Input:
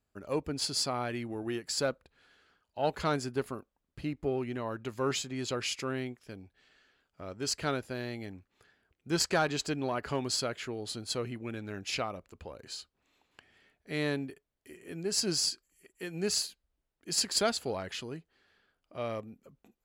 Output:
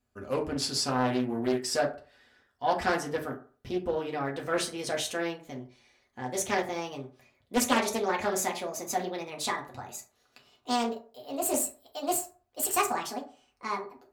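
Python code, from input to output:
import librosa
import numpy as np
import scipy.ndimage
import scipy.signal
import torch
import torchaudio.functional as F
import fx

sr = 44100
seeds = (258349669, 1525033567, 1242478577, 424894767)

y = fx.speed_glide(x, sr, from_pct=98, to_pct=183)
y = fx.rev_fdn(y, sr, rt60_s=0.41, lf_ratio=0.85, hf_ratio=0.5, size_ms=24.0, drr_db=-1.5)
y = fx.doppler_dist(y, sr, depth_ms=0.45)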